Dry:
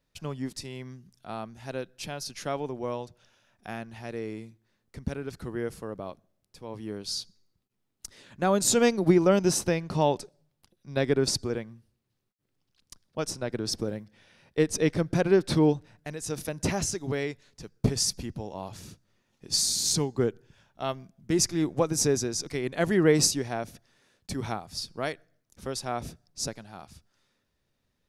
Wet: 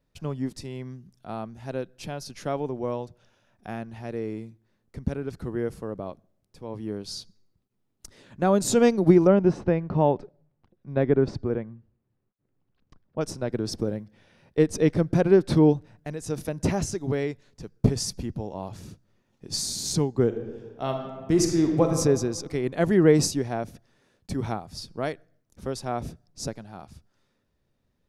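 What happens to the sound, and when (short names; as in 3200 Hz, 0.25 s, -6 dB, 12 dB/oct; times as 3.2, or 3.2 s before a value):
9.27–13.21 LPF 2100 Hz
20.25–21.88 reverb throw, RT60 1.5 s, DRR 3 dB
whole clip: tilt shelf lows +4.5 dB, about 1200 Hz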